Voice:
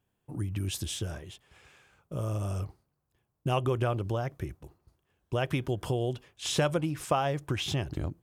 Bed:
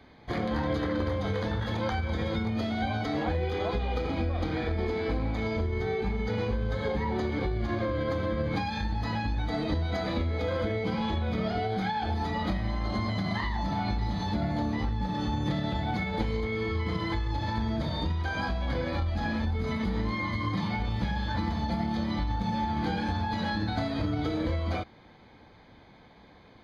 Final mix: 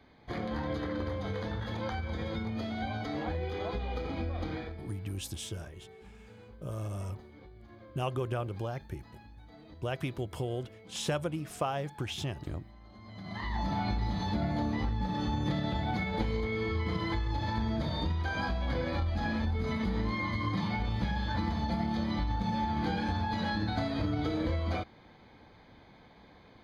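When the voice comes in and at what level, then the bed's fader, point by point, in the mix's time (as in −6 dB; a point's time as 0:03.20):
4.50 s, −5.0 dB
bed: 0:04.53 −5.5 dB
0:05.00 −23 dB
0:12.97 −23 dB
0:13.55 −2 dB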